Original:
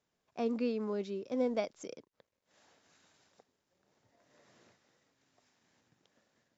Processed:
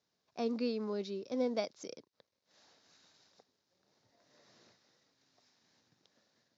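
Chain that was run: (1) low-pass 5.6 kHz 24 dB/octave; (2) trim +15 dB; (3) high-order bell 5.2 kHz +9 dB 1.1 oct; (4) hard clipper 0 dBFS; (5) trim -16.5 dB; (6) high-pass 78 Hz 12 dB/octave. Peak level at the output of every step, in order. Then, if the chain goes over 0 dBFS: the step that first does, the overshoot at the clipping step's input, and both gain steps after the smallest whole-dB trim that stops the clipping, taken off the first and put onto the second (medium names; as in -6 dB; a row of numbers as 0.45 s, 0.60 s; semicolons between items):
-20.5 dBFS, -5.5 dBFS, -5.0 dBFS, -5.0 dBFS, -21.5 dBFS, -21.5 dBFS; nothing clips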